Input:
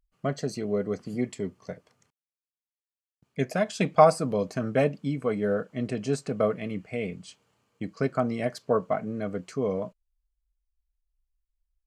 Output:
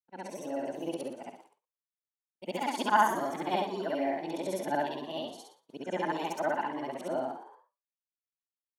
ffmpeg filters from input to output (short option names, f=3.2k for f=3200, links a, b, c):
-filter_complex "[0:a]afftfilt=real='re':imag='-im':win_size=8192:overlap=0.75,highpass=160,adynamicequalizer=threshold=0.00282:dfrequency=3200:dqfactor=1.6:tfrequency=3200:tqfactor=1.6:attack=5:release=100:ratio=0.375:range=1.5:mode=boostabove:tftype=bell,dynaudnorm=f=120:g=13:m=7.5dB,asplit=2[a][b];[b]asplit=4[c][d][e][f];[c]adelay=159,afreqshift=61,volume=-13dB[g];[d]adelay=318,afreqshift=122,volume=-20.3dB[h];[e]adelay=477,afreqshift=183,volume=-27.7dB[i];[f]adelay=636,afreqshift=244,volume=-35dB[j];[g][h][i][j]amix=inputs=4:normalize=0[k];[a][k]amix=inputs=2:normalize=0,agate=range=-33dB:threshold=-46dB:ratio=3:detection=peak,asetrate=59535,aresample=44100,volume=-7.5dB"